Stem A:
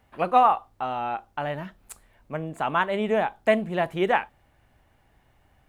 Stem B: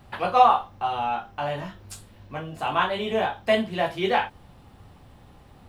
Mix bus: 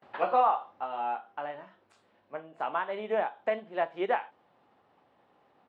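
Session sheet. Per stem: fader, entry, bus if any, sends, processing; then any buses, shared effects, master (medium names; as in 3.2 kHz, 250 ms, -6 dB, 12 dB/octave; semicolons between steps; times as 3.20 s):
+1.0 dB, 0.00 s, no send, peak limiter -13.5 dBFS, peak gain reduction 7 dB
+0.5 dB, 13 ms, no send, gate with hold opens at -46 dBFS; peak limiter -16.5 dBFS, peak gain reduction 11.5 dB; level flattener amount 50%; auto duck -10 dB, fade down 1.35 s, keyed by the first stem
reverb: none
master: high-pass 430 Hz 12 dB/octave; tape spacing loss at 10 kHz 29 dB; upward expansion 1.5:1, over -41 dBFS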